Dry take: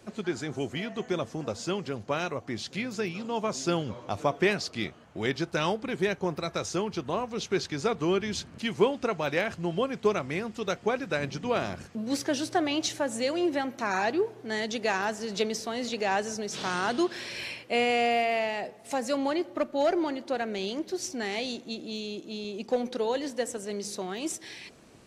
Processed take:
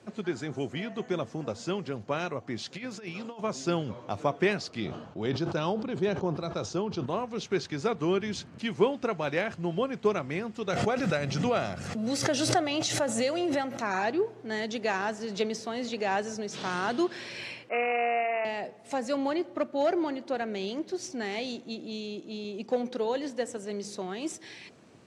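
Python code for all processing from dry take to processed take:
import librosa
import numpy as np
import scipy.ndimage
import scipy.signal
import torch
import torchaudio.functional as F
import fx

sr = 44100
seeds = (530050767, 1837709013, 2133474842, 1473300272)

y = fx.chain(x, sr, fx.low_shelf(hz=300.0, db=-7.5),
    fx.over_compress(threshold_db=-36.0, ratio=-0.5), at=(2.58, 3.41))
y = fx.chain(y, sr, fx.lowpass(hz=5500.0, slope=12),
    fx.peak_eq(hz=2000.0, db=-9.5, octaves=0.82),
    fx.sustainer(db_per_s=63.0), at=(4.8, 7.06))
y = fx.chain(y, sr, fx.high_shelf(hz=6000.0, db=7.0),
    fx.comb(ms=1.5, depth=0.33),
    fx.pre_swell(db_per_s=30.0), at=(10.73, 13.82))
y = fx.chain(y, sr, fx.highpass(hz=420.0, slope=12),
    fx.resample_bad(factor=8, down='none', up='filtered'), at=(17.69, 18.45))
y = scipy.signal.sosfilt(scipy.signal.cheby1(2, 1.0, [110.0, 8700.0], 'bandpass', fs=sr, output='sos'), y)
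y = fx.high_shelf(y, sr, hz=4400.0, db=-7.0)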